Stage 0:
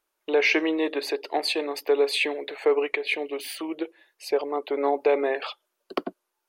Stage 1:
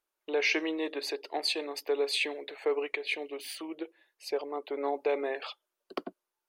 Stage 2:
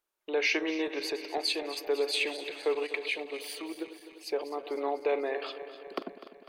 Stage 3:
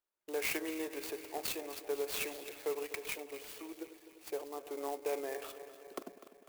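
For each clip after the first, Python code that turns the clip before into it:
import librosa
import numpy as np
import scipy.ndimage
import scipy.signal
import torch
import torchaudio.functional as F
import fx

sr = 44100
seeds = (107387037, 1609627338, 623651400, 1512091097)

y1 = fx.dynamic_eq(x, sr, hz=5900.0, q=0.73, threshold_db=-42.0, ratio=4.0, max_db=7)
y1 = y1 * 10.0 ** (-8.0 / 20.0)
y2 = fx.reverse_delay_fb(y1, sr, ms=125, feedback_pct=78, wet_db=-13.0)
y3 = fx.clock_jitter(y2, sr, seeds[0], jitter_ms=0.052)
y3 = y3 * 10.0 ** (-7.5 / 20.0)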